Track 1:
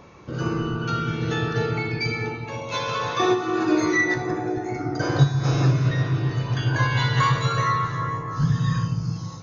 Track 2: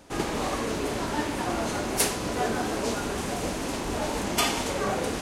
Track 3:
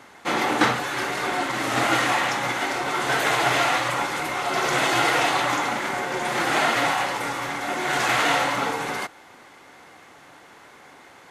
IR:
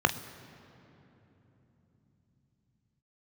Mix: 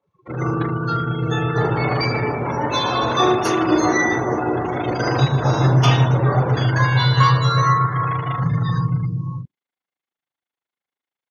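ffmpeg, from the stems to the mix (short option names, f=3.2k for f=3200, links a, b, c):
-filter_complex "[0:a]adynamicequalizer=threshold=0.01:dfrequency=2800:dqfactor=0.7:tfrequency=2800:tqfactor=0.7:attack=5:release=100:ratio=0.375:range=2.5:mode=boostabove:tftype=highshelf,volume=-3.5dB,asplit=2[a][b];[b]volume=-10dB[c];[1:a]adelay=1450,volume=-4dB,asplit=2[d][e];[e]volume=-7dB[f];[2:a]tremolo=f=26:d=0.947,volume=-9dB[g];[3:a]atrim=start_sample=2205[h];[c][f]amix=inputs=2:normalize=0[i];[i][h]afir=irnorm=-1:irlink=0[j];[a][d][g][j]amix=inputs=4:normalize=0,afftdn=nr=34:nf=-31,equalizer=f=3.3k:w=1.3:g=9.5"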